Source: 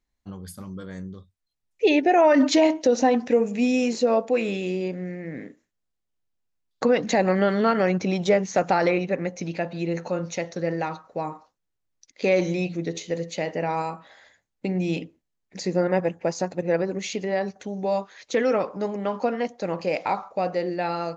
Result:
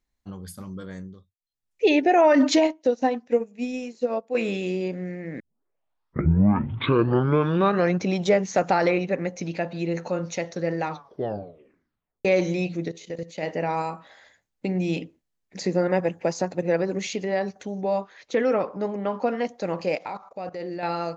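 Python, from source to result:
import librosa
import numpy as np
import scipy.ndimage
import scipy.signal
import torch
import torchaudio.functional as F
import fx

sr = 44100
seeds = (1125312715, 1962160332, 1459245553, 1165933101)

y = fx.upward_expand(x, sr, threshold_db=-29.0, expansion=2.5, at=(2.59, 4.35))
y = fx.level_steps(y, sr, step_db=15, at=(12.88, 13.43))
y = fx.band_squash(y, sr, depth_pct=40, at=(15.6, 17.07))
y = fx.lowpass(y, sr, hz=2800.0, slope=6, at=(17.81, 19.27))
y = fx.level_steps(y, sr, step_db=16, at=(19.95, 20.83))
y = fx.edit(y, sr, fx.fade_down_up(start_s=0.91, length_s=0.93, db=-22.5, fade_s=0.46),
    fx.tape_start(start_s=5.4, length_s=2.62),
    fx.tape_stop(start_s=10.9, length_s=1.35), tone=tone)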